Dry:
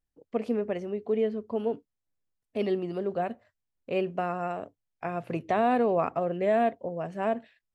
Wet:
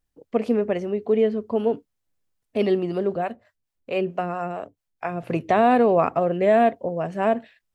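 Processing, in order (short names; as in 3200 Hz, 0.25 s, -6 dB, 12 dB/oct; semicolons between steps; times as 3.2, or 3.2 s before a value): 3.16–5.23 harmonic tremolo 4.5 Hz, depth 70%, crossover 470 Hz; gain +7 dB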